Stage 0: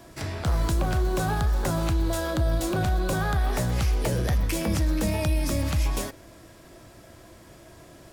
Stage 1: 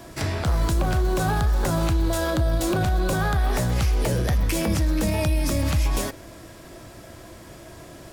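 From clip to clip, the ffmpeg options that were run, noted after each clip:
-af "alimiter=limit=0.0944:level=0:latency=1:release=72,volume=2"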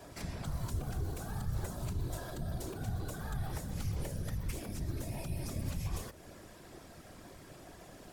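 -filter_complex "[0:a]acrossover=split=82|6000[s0][s1][s2];[s0]acompressor=threshold=0.0501:ratio=4[s3];[s1]acompressor=threshold=0.0178:ratio=4[s4];[s2]acompressor=threshold=0.01:ratio=4[s5];[s3][s4][s5]amix=inputs=3:normalize=0,afftfilt=real='hypot(re,im)*cos(2*PI*random(0))':imag='hypot(re,im)*sin(2*PI*random(1))':win_size=512:overlap=0.75,volume=0.668"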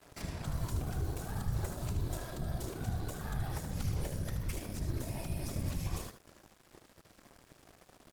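-af "aeval=exprs='sgn(val(0))*max(abs(val(0))-0.00299,0)':c=same,aecho=1:1:76:0.398,volume=1.26"

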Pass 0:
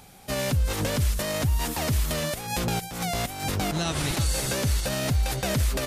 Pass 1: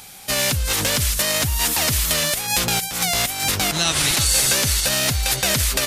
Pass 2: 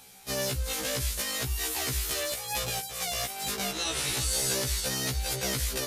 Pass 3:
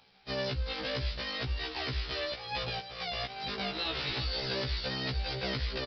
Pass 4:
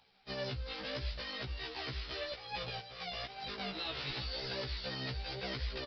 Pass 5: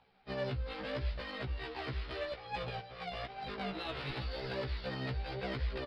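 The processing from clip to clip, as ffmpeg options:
-af "tiltshelf=f=1200:g=-7,acontrast=80"
-af "equalizer=f=430:w=3:g=7,afftfilt=real='re*1.73*eq(mod(b,3),0)':imag='im*1.73*eq(mod(b,3),0)':win_size=2048:overlap=0.75,volume=0.355"
-af "aecho=1:1:639:0.112,aresample=11025,aeval=exprs='sgn(val(0))*max(abs(val(0))-0.00112,0)':c=same,aresample=44100,volume=0.841"
-af "flanger=delay=1:depth=7.9:regen=57:speed=0.88:shape=triangular,volume=0.841"
-af "adynamicsmooth=sensitivity=1.5:basefreq=2400,volume=1.5"

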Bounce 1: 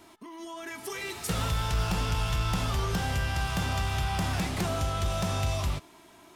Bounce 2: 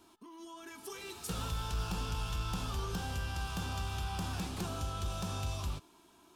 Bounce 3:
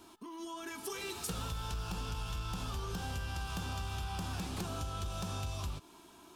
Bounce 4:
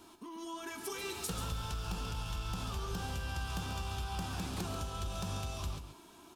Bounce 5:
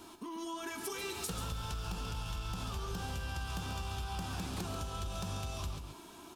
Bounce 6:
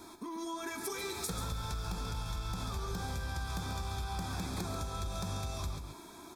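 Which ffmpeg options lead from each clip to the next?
-af "equalizer=f=125:t=o:w=0.33:g=-7,equalizer=f=630:t=o:w=0.33:g=-7,equalizer=f=2000:t=o:w=0.33:g=-12,volume=0.447"
-af "acompressor=threshold=0.00891:ratio=6,volume=1.88"
-af "aecho=1:1:138:0.355"
-af "acompressor=threshold=0.00631:ratio=2,volume=1.68"
-af "asuperstop=centerf=2900:order=8:qfactor=4.9,volume=1.19"

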